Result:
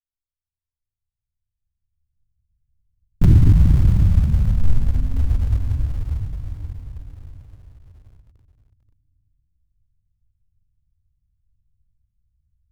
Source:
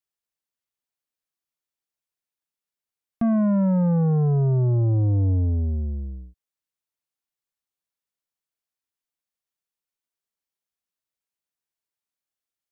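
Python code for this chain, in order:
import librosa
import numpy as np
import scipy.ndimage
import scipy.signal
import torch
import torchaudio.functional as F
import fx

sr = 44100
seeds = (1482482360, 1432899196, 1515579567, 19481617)

p1 = fx.recorder_agc(x, sr, target_db=-26.5, rise_db_per_s=13.0, max_gain_db=30)
p2 = p1 * np.sin(2.0 * np.pi * 370.0 * np.arange(len(p1)) / sr)
p3 = scipy.signal.sosfilt(scipy.signal.cheby2(4, 80, 520.0, 'lowpass', fs=sr, output='sos'), p2)
p4 = fx.room_shoebox(p3, sr, seeds[0], volume_m3=140.0, walls='hard', distance_m=1.7)
p5 = fx.quant_companded(p4, sr, bits=4)
p6 = p4 + (p5 * 10.0 ** (-12.0 / 20.0))
p7 = fx.fold_sine(p6, sr, drive_db=9, ceiling_db=0.5)
p8 = p7 + fx.echo_single(p7, sr, ms=532, db=-10.5, dry=0)
y = p8 * 10.0 ** (-6.5 / 20.0)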